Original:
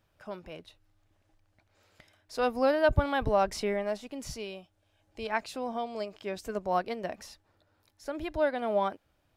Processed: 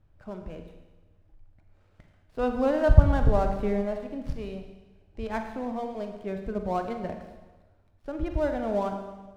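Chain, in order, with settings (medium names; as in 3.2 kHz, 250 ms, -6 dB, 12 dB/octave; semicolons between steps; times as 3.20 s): dead-time distortion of 0.096 ms; RIAA curve playback; reverberation RT60 1.2 s, pre-delay 36 ms, DRR 5 dB; trim -2.5 dB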